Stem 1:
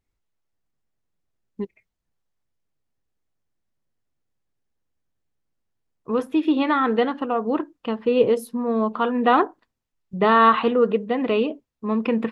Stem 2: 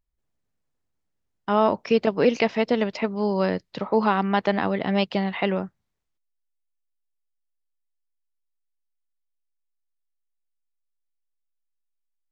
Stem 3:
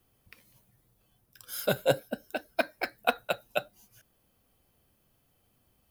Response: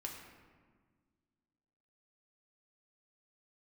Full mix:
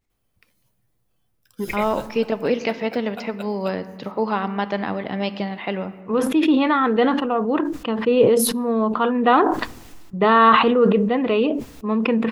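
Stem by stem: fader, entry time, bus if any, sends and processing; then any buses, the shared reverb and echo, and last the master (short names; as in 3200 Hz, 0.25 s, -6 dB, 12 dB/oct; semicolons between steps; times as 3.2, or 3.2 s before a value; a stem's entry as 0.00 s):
+1.0 dB, 0.00 s, send -21.5 dB, sustainer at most 40 dB/s
-4.5 dB, 0.25 s, send -4.5 dB, dry
-5.0 dB, 0.10 s, no send, limiter -17 dBFS, peak gain reduction 9 dB; bell 15000 Hz -5 dB 0.47 oct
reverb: on, RT60 1.6 s, pre-delay 4 ms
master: dry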